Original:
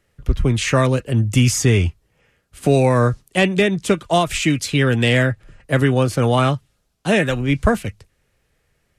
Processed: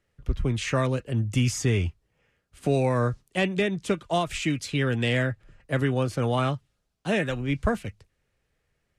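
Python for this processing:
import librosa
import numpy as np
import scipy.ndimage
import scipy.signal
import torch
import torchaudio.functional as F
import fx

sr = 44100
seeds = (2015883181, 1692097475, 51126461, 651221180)

y = fx.high_shelf(x, sr, hz=11000.0, db=-10.0)
y = y * librosa.db_to_amplitude(-8.5)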